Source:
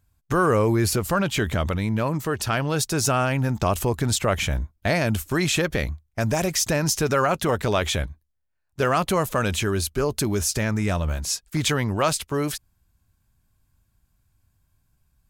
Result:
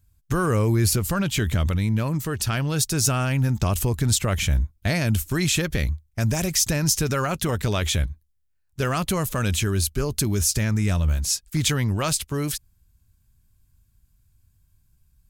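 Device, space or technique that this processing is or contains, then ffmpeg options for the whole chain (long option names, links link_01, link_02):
smiley-face EQ: -af "lowshelf=frequency=150:gain=6.5,equalizer=frequency=720:width_type=o:width=2.4:gain=-7,highshelf=frequency=5300:gain=4.5"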